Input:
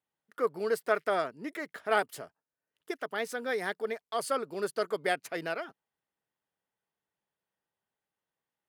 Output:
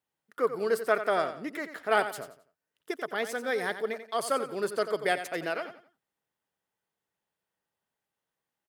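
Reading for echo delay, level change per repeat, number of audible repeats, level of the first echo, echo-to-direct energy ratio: 89 ms, −10.5 dB, 3, −11.0 dB, −10.5 dB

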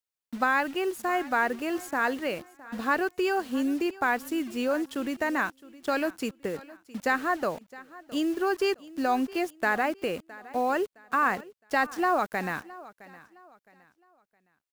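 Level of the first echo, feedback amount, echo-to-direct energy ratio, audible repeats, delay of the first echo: −19.5 dB, 33%, −19.0 dB, 2, 664 ms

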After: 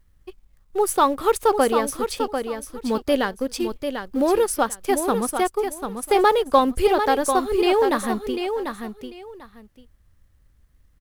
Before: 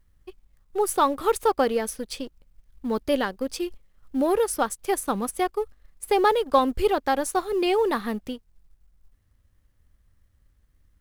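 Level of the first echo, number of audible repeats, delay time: −7.0 dB, 2, 744 ms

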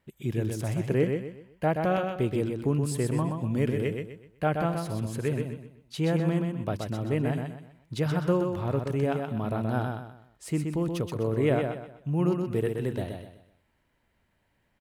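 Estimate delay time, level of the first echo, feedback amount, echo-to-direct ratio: 126 ms, −5.0 dB, 34%, −4.5 dB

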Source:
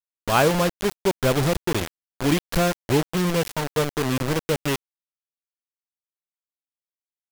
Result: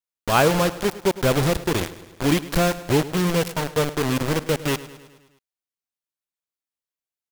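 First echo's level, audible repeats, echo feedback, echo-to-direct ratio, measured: −16.5 dB, 5, 59%, −14.5 dB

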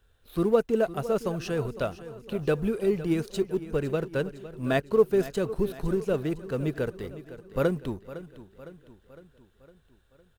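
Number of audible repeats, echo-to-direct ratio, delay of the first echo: 4, −13.5 dB, 508 ms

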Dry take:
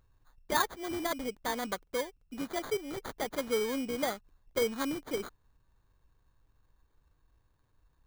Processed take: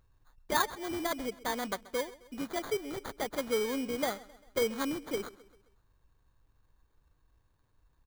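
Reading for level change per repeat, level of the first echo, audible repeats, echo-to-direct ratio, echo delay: −6.5 dB, −19.5 dB, 3, −18.5 dB, 132 ms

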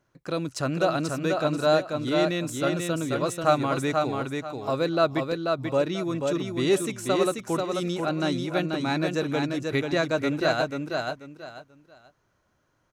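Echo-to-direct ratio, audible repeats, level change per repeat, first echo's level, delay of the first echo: −3.5 dB, 3, −12.0 dB, −4.0 dB, 487 ms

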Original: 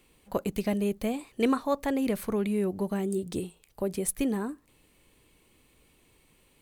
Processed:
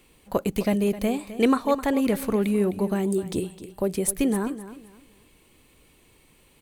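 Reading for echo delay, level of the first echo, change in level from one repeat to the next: 259 ms, −14.0 dB, −11.5 dB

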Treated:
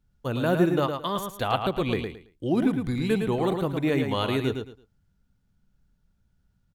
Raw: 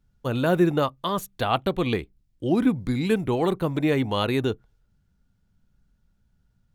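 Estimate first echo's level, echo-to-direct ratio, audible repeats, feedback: −6.0 dB, −6.0 dB, 3, 23%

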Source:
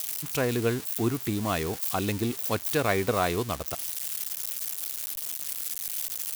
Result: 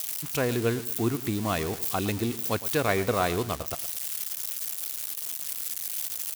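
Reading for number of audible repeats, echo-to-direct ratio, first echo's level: 2, −15.0 dB, −15.5 dB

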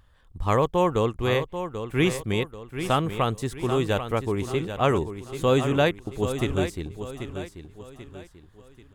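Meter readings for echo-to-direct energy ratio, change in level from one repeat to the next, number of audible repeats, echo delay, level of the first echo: −9.0 dB, −8.0 dB, 4, 787 ms, −9.5 dB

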